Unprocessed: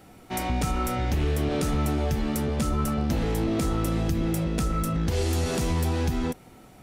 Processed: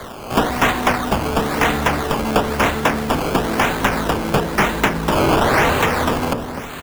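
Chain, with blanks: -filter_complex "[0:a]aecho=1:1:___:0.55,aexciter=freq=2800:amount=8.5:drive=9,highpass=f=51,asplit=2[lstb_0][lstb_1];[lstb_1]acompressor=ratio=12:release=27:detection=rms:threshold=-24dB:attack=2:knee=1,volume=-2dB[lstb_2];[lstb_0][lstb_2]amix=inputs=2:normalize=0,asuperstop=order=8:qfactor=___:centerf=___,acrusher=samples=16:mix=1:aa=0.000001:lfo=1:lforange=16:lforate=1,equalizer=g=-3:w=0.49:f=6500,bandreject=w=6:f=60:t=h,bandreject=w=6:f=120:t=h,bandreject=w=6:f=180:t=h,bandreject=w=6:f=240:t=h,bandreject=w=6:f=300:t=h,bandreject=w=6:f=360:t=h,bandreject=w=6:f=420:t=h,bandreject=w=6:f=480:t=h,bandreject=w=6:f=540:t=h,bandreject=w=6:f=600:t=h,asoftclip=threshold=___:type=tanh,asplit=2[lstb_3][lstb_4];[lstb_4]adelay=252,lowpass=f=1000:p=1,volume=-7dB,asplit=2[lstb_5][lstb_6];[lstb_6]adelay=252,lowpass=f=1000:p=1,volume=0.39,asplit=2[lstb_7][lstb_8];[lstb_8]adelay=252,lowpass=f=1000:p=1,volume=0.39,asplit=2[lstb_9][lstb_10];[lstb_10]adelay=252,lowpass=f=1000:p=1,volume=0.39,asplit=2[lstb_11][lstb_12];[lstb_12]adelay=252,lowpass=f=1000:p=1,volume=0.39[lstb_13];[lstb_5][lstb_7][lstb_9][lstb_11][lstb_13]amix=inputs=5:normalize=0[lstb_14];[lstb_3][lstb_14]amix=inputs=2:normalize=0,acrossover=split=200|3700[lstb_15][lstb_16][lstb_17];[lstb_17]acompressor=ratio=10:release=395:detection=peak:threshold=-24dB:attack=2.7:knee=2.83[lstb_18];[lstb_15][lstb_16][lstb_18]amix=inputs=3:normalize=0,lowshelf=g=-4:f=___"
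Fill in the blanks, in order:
4.3, 0.76, 2100, -8.5dB, 110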